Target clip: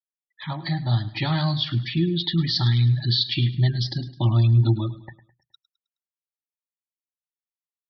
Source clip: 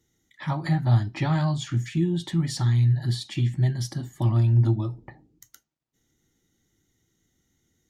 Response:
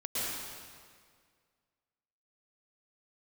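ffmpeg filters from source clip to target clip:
-filter_complex "[0:a]equalizer=f=4k:w=0.96:g=13,afftfilt=real='re*gte(hypot(re,im),0.02)':imag='im*gte(hypot(re,im),0.02)':win_size=1024:overlap=0.75,dynaudnorm=f=490:g=5:m=6dB,asplit=2[a][b];[b]aecho=0:1:105|210|315|420:0.15|0.0613|0.0252|0.0103[c];[a][c]amix=inputs=2:normalize=0,aresample=11025,aresample=44100,volume=-4dB"

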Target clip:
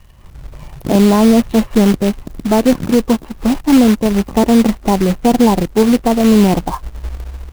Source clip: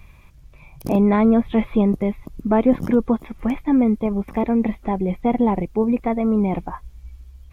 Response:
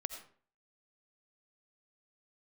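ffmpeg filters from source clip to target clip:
-filter_complex "[0:a]acrossover=split=1500[a][b];[a]dynaudnorm=f=170:g=3:m=14.5dB[c];[b]aeval=exprs='val(0)*sin(2*PI*550*n/s)':c=same[d];[c][d]amix=inputs=2:normalize=0,acrusher=bits=3:mode=log:mix=0:aa=0.000001"

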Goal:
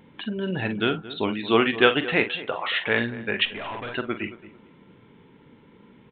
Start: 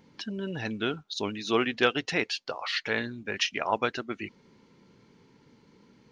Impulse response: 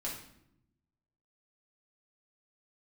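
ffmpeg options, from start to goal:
-filter_complex "[0:a]asplit=2[a][b];[b]aecho=0:1:43|53:0.282|0.141[c];[a][c]amix=inputs=2:normalize=0,asettb=1/sr,asplit=3[d][e][f];[d]atrim=end=3.454[g];[e]atrim=start=3.45:end=3.94,asetpts=PTS-STARTPTS,afade=t=in:d=0.004:c=qsin,afade=t=out:st=0.486:d=0.004:c=qsin,aeval=exprs='(tanh(70.8*val(0)+0.25)-tanh(0.25))/70.8':c=same[h];[f]atrim=start=3.936[i];[g][h]acrossfade=d=0.004:c1=hsin:c2=qsin[j];[j][i]acrossfade=d=0.004:c1=qsin:c2=hsin,asplit=2[k][l];[l]adelay=224,lowpass=f=1.7k:p=1,volume=-15.5dB,asplit=2[m][n];[n]adelay=224,lowpass=f=1.7k:p=1,volume=0.31,asplit=2[o][p];[p]adelay=224,lowpass=f=1.7k:p=1,volume=0.31[q];[m][o][q]amix=inputs=3:normalize=0[r];[k][r]amix=inputs=2:normalize=0,aresample=8000,aresample=44100,volume=6dB"

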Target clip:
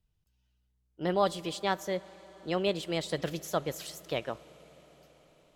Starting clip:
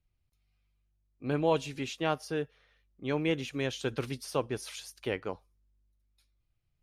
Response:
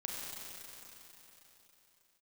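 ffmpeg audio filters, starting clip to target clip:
-filter_complex "[0:a]asetrate=54243,aresample=44100,asplit=2[a][b];[1:a]atrim=start_sample=2205,asetrate=25137,aresample=44100[c];[b][c]afir=irnorm=-1:irlink=0,volume=-23dB[d];[a][d]amix=inputs=2:normalize=0"

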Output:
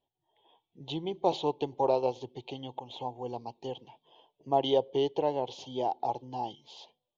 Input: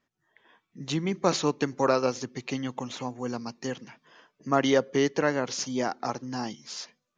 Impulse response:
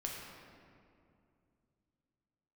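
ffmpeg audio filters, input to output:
-filter_complex "[0:a]firequalizer=gain_entry='entry(100,0);entry(210,-12);entry(370,1);entry(570,0);entry(860,8);entry(1300,-27);entry(1800,-23);entry(3200,5);entry(5200,-18)':delay=0.05:min_phase=1,asettb=1/sr,asplit=3[a][b][c];[a]atrim=end=2.424[d];[b]atrim=start=2.42:end=2.96,asetpts=PTS-STARTPTS,afade=t=in:d=0.004:c=qsin,afade=t=out:st=0.536:d=0.004:c=qsin,acompressor=threshold=-32dB:ratio=5[e];[c]atrim=start=2.956[f];[d][e]acrossfade=d=0.004:c1=hsin:c2=qsin[g];[g][f]acrossfade=d=0.004:c1=qsin:c2=hsin,volume=-3dB"

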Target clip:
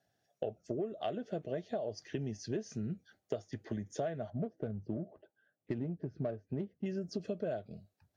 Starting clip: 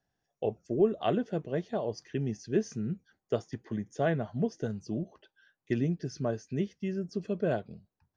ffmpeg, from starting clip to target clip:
-filter_complex "[0:a]asettb=1/sr,asplit=3[a][b][c];[a]atrim=end=4.304[d];[b]atrim=start=4.3:end=6.86,asetpts=PTS-STARTPTS,afade=t=in:d=0.004:c=qsin,afade=t=out:st=2.556:d=0.004:c=qsin,adynamicsmooth=sensitivity=2:basefreq=880[e];[c]atrim=start=6.856[f];[d][e]acrossfade=d=0.004:c1=hsin:c2=qsin[g];[g][f]acrossfade=d=0.004:c1=qsin:c2=hsin,lowshelf=f=120:g=-6.5,aeval=exprs='0.178*(cos(1*acos(clip(val(0)/0.178,-1,1)))-cos(1*PI/2))+0.00398*(cos(5*acos(clip(val(0)/0.178,-1,1)))-cos(5*PI/2))':c=same,equalizer=f=100:t=o:w=0.33:g=7,equalizer=f=630:t=o:w=0.33:g=8,equalizer=f=1k:t=o:w=0.33:g=-9,equalizer=f=4k:t=o:w=0.33:g=3,acompressor=threshold=-36dB:ratio=10,highpass=46,volume=2.5dB" -ar 44100 -c:a libvorbis -b:a 64k

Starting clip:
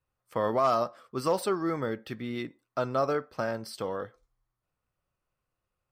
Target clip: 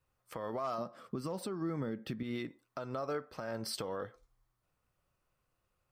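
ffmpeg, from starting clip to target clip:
-filter_complex "[0:a]asettb=1/sr,asplit=3[a][b][c];[a]atrim=end=0.784[d];[b]atrim=start=0.78:end=2.23,asetpts=PTS-STARTPTS,afade=t=in:d=0.004:c=qsin,afade=t=out:st=1.446:d=0.004:c=qsin,equalizer=f=190:t=o:w=1.6:g=11.5[e];[c]atrim=start=2.226[f];[d][e]acrossfade=d=0.004:c1=hsin:c2=qsin[g];[g][f]acrossfade=d=0.004:c1=qsin:c2=hsin,acompressor=threshold=-32dB:ratio=6,alimiter=level_in=7.5dB:limit=-24dB:level=0:latency=1:release=313,volume=-7.5dB,volume=3.5dB"

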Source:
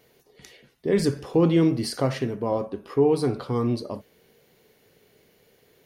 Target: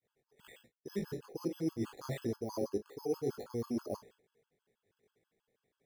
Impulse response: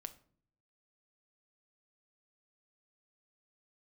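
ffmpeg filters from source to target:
-af "flanger=delay=17:depth=4.7:speed=1.7,areverse,acompressor=threshold=-34dB:ratio=12,areverse,agate=range=-33dB:threshold=-52dB:ratio=3:detection=peak,highshelf=f=2.9k:t=q:w=1.5:g=-8,acrusher=samples=8:mix=1:aa=0.000001,adynamicequalizer=threshold=0.00251:dfrequency=390:dqfactor=1.9:tfrequency=390:tqfactor=1.9:attack=5:release=100:ratio=0.375:range=3.5:mode=boostabove:tftype=bell,afftfilt=real='re*gt(sin(2*PI*6.2*pts/sr)*(1-2*mod(floor(b*sr/1024/860),2)),0)':imag='im*gt(sin(2*PI*6.2*pts/sr)*(1-2*mod(floor(b*sr/1024/860),2)),0)':win_size=1024:overlap=0.75"

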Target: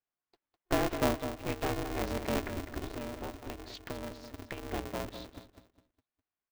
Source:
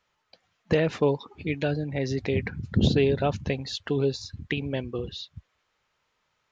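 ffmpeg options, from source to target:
-filter_complex "[0:a]agate=range=-16dB:threshold=-53dB:ratio=16:detection=peak,highshelf=f=2.9k:g=-11,asettb=1/sr,asplit=3[a][b][c];[a]atrim=end=2.604[d];[b]atrim=start=2.6:end=4.72,asetpts=PTS-STARTPTS,afade=t=in:d=0.004:c=qsin,afade=t=out:st=2.116:d=0.004:c=qsin,acompressor=threshold=-32dB:ratio=6[e];[c]atrim=start=4.716[f];[d][e]acrossfade=d=0.004:c1=hsin:c2=qsin[g];[g][f]acrossfade=d=0.004:c1=qsin:c2=hsin,asplit=2[h][i];[i]adelay=204,lowpass=f=3.4k:p=1,volume=-8.5dB,asplit=2[j][k];[k]adelay=204,lowpass=f=3.4k:p=1,volume=0.35,asplit=2[l][m];[m]adelay=204,lowpass=f=3.4k:p=1,volume=0.35,asplit=2[n][o];[o]adelay=204,lowpass=f=3.4k:p=1,volume=0.35[p];[h][j][l][n][p]amix=inputs=5:normalize=0,aeval=exprs='val(0)*sgn(sin(2*PI*180*n/s))':c=same,volume=-6dB"

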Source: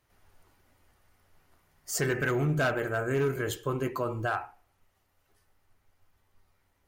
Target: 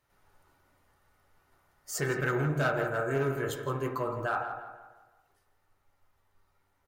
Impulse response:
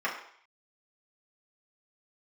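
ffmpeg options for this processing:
-filter_complex "[0:a]asplit=2[a][b];[b]adelay=166,lowpass=f=3k:p=1,volume=-9dB,asplit=2[c][d];[d]adelay=166,lowpass=f=3k:p=1,volume=0.45,asplit=2[e][f];[f]adelay=166,lowpass=f=3k:p=1,volume=0.45,asplit=2[g][h];[h]adelay=166,lowpass=f=3k:p=1,volume=0.45,asplit=2[i][j];[j]adelay=166,lowpass=f=3k:p=1,volume=0.45[k];[a][c][e][g][i][k]amix=inputs=6:normalize=0,asplit=2[l][m];[1:a]atrim=start_sample=2205,asetrate=30870,aresample=44100[n];[m][n]afir=irnorm=-1:irlink=0,volume=-12dB[o];[l][o]amix=inputs=2:normalize=0,volume=-5dB"

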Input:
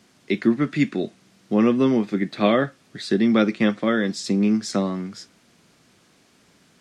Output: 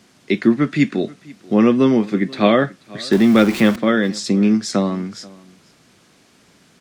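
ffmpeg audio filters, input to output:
-filter_complex "[0:a]asettb=1/sr,asplit=3[a][b][c];[a]atrim=end=3.124[d];[b]atrim=start=3.12:end=3.76,asetpts=PTS-STARTPTS,afade=t=in:d=0.004:c=qsin,afade=t=out:st=0.636:d=0.004:c=qsin,aeval=exprs='val(0)+0.5*0.0447*sgn(val(0))':c=same[e];[c]atrim=start=3.756[f];[d][e]acrossfade=d=0.004:c1=hsin:c2=qsin[g];[g][f]acrossfade=d=0.004:c1=qsin:c2=hsin,aecho=1:1:484:0.0708,volume=4.5dB"

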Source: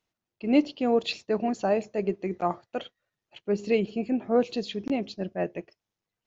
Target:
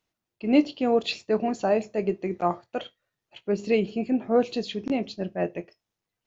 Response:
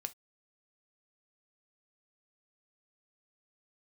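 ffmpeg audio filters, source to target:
-filter_complex "[0:a]asplit=2[a][b];[1:a]atrim=start_sample=2205,asetrate=40572,aresample=44100,adelay=23[c];[b][c]afir=irnorm=-1:irlink=0,volume=-11.5dB[d];[a][d]amix=inputs=2:normalize=0,volume=1.5dB"

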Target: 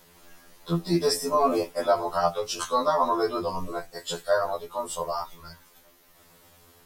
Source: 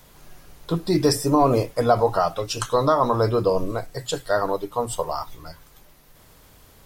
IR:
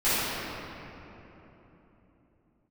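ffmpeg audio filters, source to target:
-af "lowshelf=f=140:g=-9.5,afftfilt=real='re*2*eq(mod(b,4),0)':imag='im*2*eq(mod(b,4),0)':win_size=2048:overlap=0.75"

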